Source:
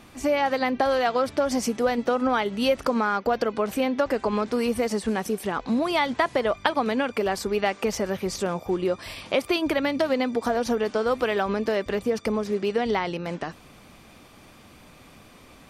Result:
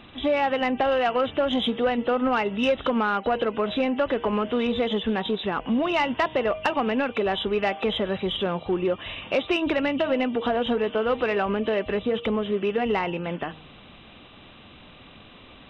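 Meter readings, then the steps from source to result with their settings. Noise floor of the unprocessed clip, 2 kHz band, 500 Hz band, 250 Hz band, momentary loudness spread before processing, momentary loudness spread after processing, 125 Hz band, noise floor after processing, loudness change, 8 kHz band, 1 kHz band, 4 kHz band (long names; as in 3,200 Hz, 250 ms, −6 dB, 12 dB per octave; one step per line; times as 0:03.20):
−50 dBFS, +0.5 dB, 0.0 dB, +0.5 dB, 4 LU, 3 LU, +1.0 dB, −48 dBFS, +0.5 dB, below −15 dB, 0.0 dB, +3.0 dB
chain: hearing-aid frequency compression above 2,600 Hz 4 to 1
hum removal 157.1 Hz, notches 6
soft clipping −15.5 dBFS, distortion −19 dB
level +1.5 dB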